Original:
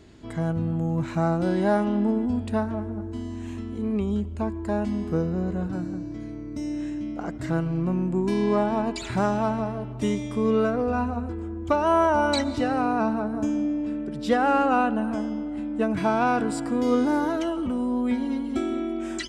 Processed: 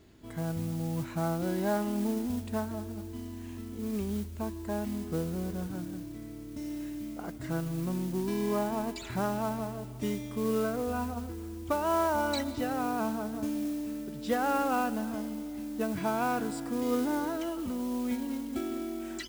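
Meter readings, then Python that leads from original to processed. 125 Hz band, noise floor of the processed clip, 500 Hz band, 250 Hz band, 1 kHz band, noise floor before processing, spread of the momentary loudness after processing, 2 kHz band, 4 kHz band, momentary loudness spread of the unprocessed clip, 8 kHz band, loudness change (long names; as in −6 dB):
−7.5 dB, −42 dBFS, −7.5 dB, −7.5 dB, −7.5 dB, −35 dBFS, 10 LU, −7.5 dB, −5.5 dB, 10 LU, 0.0 dB, −7.5 dB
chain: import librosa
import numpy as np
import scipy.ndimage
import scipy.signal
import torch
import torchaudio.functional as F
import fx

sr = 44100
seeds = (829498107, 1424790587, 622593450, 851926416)

y = fx.mod_noise(x, sr, seeds[0], snr_db=18)
y = y * 10.0 ** (-7.5 / 20.0)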